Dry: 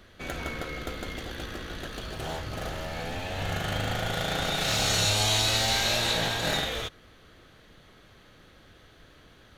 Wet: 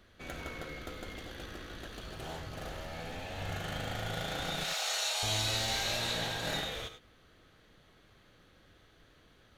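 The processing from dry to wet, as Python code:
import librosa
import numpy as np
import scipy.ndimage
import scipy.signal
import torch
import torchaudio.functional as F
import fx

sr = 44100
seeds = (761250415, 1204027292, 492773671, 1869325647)

y = fx.highpass(x, sr, hz=580.0, slope=24, at=(4.64, 5.23))
y = fx.rev_gated(y, sr, seeds[0], gate_ms=120, shape='rising', drr_db=9.5)
y = y * librosa.db_to_amplitude(-8.0)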